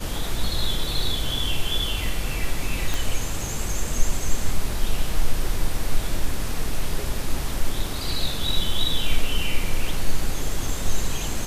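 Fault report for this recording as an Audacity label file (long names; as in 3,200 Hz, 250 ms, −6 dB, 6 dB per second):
2.940000	2.940000	click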